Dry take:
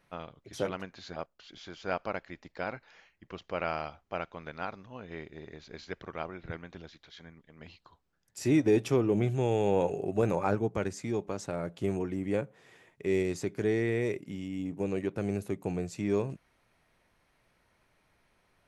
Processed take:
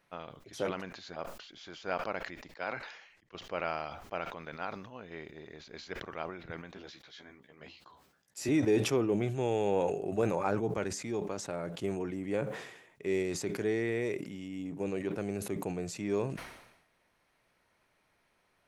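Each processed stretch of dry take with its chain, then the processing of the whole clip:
2.56–3.35 s: low-pass 8.3 kHz + bass shelf 360 Hz -7.5 dB + three bands expanded up and down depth 70%
6.74–8.49 s: high-pass 95 Hz + doubling 15 ms -3 dB
whole clip: bass shelf 160 Hz -8.5 dB; decay stretcher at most 63 dB/s; trim -1.5 dB

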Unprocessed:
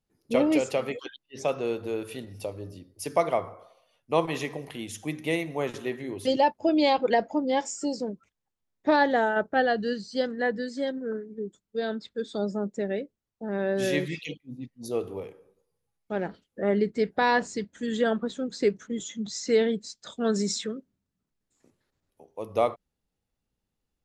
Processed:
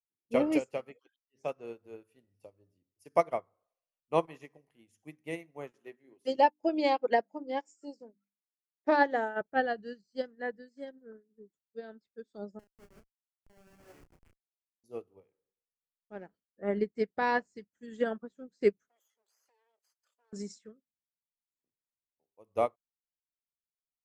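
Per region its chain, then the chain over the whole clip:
5.72–9.41 s: high-pass 180 Hz + hum notches 50/100/150/200/250/300 Hz
12.59–14.84 s: high-pass 450 Hz + Schmitt trigger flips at -29.5 dBFS + doubling 32 ms -3 dB
18.88–20.33 s: comb filter that takes the minimum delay 0.63 ms + inverse Chebyshev high-pass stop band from 190 Hz, stop band 50 dB + compression 16:1, threshold -40 dBFS
whole clip: peaking EQ 3.7 kHz -10 dB 0.37 oct; upward expansion 2.5:1, over -39 dBFS

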